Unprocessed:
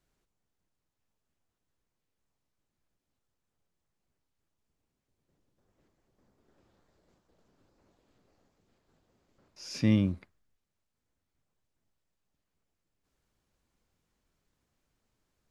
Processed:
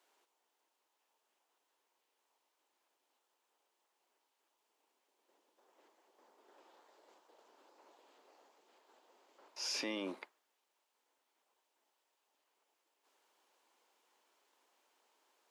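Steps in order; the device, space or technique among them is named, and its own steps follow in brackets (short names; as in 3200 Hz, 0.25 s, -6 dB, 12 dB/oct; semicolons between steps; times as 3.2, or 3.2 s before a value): laptop speaker (HPF 350 Hz 24 dB/oct; bell 910 Hz +8.5 dB 0.54 oct; bell 3000 Hz +4 dB 0.58 oct; limiter -34.5 dBFS, peak gain reduction 12.5 dB); HPF 210 Hz; gain +5 dB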